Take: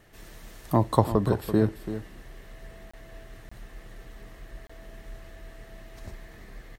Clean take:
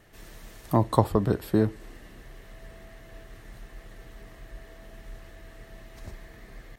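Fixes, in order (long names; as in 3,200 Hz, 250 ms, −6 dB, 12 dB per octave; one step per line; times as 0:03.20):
repair the gap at 0:02.91/0:03.49/0:04.67, 25 ms
echo removal 336 ms −11.5 dB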